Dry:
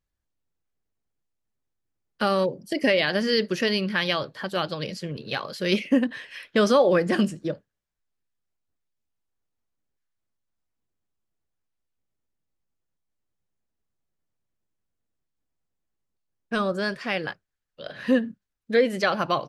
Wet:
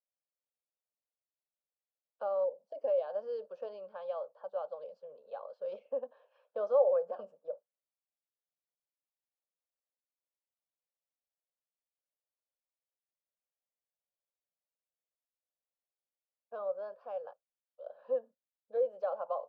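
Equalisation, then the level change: ladder high-pass 470 Hz, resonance 65%; low-pass 1.1 kHz 12 dB/octave; static phaser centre 820 Hz, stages 4; -3.0 dB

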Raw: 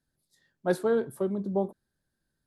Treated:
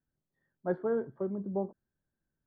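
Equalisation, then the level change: Savitzky-Golay filter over 41 samples; distance through air 320 m; -4.5 dB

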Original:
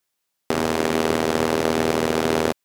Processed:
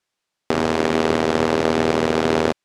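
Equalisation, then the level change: distance through air 66 m; +2.5 dB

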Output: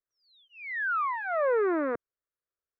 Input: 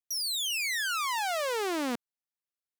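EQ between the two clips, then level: Gaussian low-pass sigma 4.6 samples; static phaser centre 820 Hz, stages 6; +8.5 dB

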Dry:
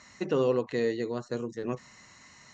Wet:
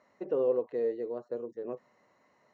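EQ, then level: band-pass filter 530 Hz, Q 2; 0.0 dB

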